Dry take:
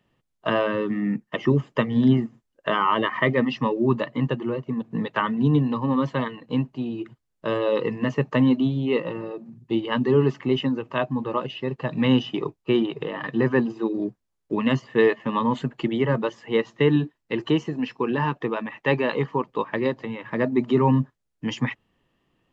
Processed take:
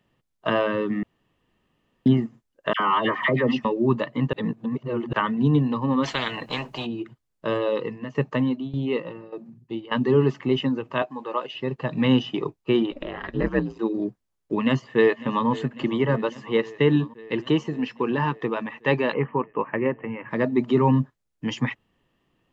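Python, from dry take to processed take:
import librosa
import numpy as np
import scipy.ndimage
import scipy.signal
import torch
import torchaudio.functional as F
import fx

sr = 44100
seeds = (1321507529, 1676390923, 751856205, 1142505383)

y = fx.dispersion(x, sr, late='lows', ms=70.0, hz=1400.0, at=(2.73, 3.65))
y = fx.spectral_comp(y, sr, ratio=4.0, at=(6.03, 6.85), fade=0.02)
y = fx.tremolo_shape(y, sr, shape='saw_down', hz=1.7, depth_pct=80, at=(7.56, 9.99))
y = fx.highpass(y, sr, hz=450.0, slope=12, at=(11.02, 11.55))
y = fx.ring_mod(y, sr, carrier_hz=fx.line((12.91, 160.0), (13.78, 54.0)), at=(12.91, 13.78), fade=0.02)
y = fx.echo_throw(y, sr, start_s=14.63, length_s=0.85, ms=550, feedback_pct=75, wet_db=-17.5)
y = fx.steep_lowpass(y, sr, hz=2800.0, slope=72, at=(19.12, 20.29), fade=0.02)
y = fx.edit(y, sr, fx.room_tone_fill(start_s=1.03, length_s=1.03),
    fx.reverse_span(start_s=4.33, length_s=0.8), tone=tone)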